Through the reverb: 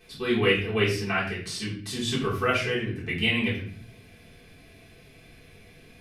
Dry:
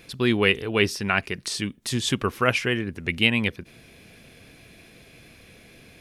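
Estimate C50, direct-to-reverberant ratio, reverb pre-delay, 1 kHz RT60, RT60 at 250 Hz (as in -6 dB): 6.0 dB, -9.0 dB, 3 ms, 0.40 s, 0.85 s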